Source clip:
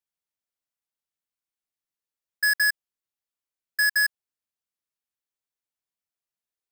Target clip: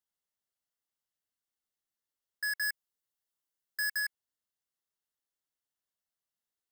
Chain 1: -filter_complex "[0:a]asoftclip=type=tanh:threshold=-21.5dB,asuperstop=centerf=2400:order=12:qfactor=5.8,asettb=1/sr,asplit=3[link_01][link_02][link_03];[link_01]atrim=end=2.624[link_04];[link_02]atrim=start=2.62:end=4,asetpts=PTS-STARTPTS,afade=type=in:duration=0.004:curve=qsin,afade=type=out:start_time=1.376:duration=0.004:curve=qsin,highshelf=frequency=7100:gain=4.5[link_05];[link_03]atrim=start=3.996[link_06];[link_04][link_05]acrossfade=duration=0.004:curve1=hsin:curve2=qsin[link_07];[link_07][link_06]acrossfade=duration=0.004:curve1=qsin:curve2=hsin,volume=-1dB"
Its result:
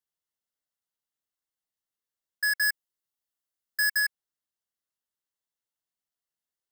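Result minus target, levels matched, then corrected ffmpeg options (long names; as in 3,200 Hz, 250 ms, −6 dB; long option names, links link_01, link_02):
soft clipping: distortion −10 dB
-filter_complex "[0:a]asoftclip=type=tanh:threshold=-30.5dB,asuperstop=centerf=2400:order=12:qfactor=5.8,asettb=1/sr,asplit=3[link_01][link_02][link_03];[link_01]atrim=end=2.624[link_04];[link_02]atrim=start=2.62:end=4,asetpts=PTS-STARTPTS,afade=type=in:duration=0.004:curve=qsin,afade=type=out:start_time=1.376:duration=0.004:curve=qsin,highshelf=frequency=7100:gain=4.5[link_05];[link_03]atrim=start=3.996[link_06];[link_04][link_05]acrossfade=duration=0.004:curve1=hsin:curve2=qsin[link_07];[link_07][link_06]acrossfade=duration=0.004:curve1=qsin:curve2=hsin,volume=-1dB"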